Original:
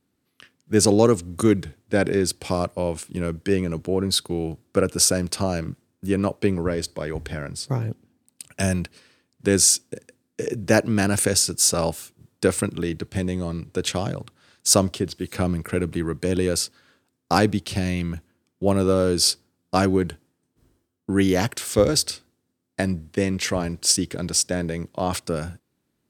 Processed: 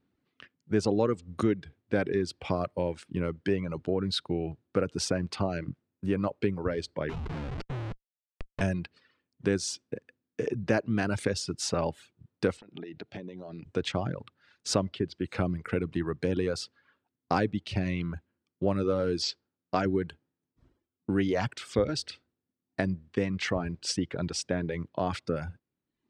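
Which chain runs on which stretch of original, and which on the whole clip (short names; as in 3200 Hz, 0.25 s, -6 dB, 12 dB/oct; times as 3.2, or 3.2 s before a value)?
7.09–8.61 LPF 1000 Hz 6 dB/oct + Schmitt trigger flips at -38.5 dBFS
12.57–13.66 speaker cabinet 190–6100 Hz, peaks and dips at 690 Hz +6 dB, 1100 Hz -8 dB, 1900 Hz -3 dB + compressor 10:1, threshold -33 dBFS
19.22–19.86 brick-wall FIR low-pass 8000 Hz + low shelf 220 Hz -6.5 dB
whole clip: LPF 3300 Hz 12 dB/oct; reverb removal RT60 0.72 s; compressor 2:1, threshold -25 dBFS; gain -1.5 dB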